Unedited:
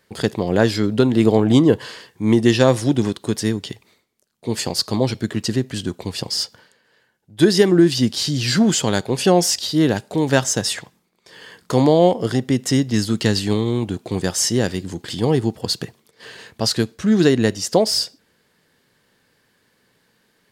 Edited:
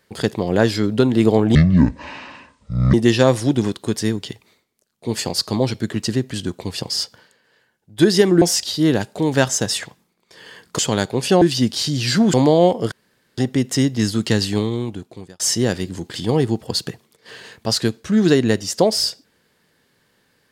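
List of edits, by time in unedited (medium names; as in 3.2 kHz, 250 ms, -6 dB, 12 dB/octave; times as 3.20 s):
1.55–2.34 s: speed 57%
7.82–8.74 s: swap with 9.37–11.74 s
12.32 s: insert room tone 0.46 s
13.47–14.34 s: fade out linear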